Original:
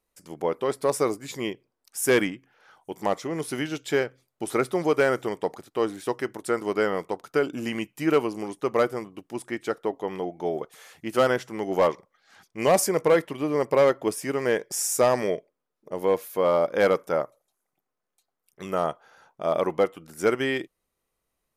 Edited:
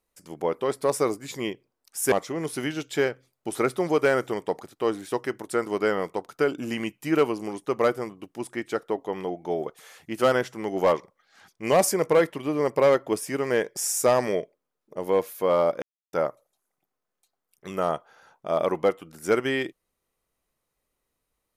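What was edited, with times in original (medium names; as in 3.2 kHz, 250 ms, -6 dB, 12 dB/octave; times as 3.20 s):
2.12–3.07 s: delete
16.77–17.08 s: mute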